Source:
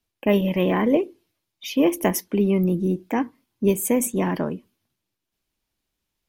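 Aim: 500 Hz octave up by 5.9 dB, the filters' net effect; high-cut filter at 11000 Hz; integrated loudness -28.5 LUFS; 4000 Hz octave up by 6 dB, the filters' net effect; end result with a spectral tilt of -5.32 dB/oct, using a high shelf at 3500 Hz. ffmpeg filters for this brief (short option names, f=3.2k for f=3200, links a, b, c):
-af "lowpass=11k,equalizer=f=500:t=o:g=7.5,highshelf=f=3.5k:g=3,equalizer=f=4k:t=o:g=6.5,volume=-9.5dB"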